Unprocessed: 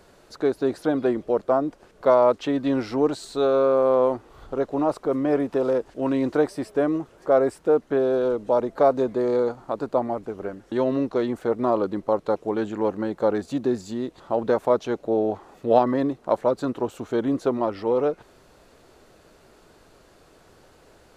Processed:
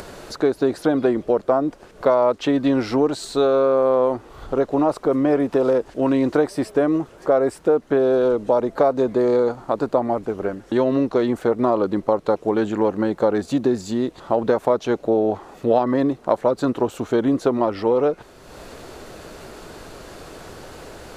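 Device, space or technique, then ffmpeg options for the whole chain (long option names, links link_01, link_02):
upward and downward compression: -af "acompressor=mode=upward:threshold=-36dB:ratio=2.5,acompressor=threshold=-22dB:ratio=3,volume=7dB"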